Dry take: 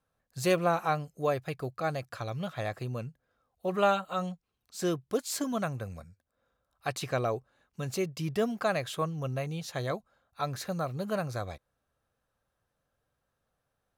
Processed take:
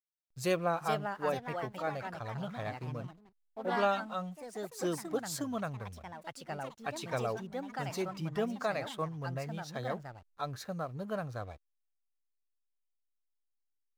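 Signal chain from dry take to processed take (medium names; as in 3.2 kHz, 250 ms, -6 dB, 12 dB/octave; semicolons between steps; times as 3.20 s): spectral noise reduction 6 dB; ever faster or slower copies 500 ms, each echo +3 st, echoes 3, each echo -6 dB; hysteresis with a dead band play -49 dBFS; trim -4.5 dB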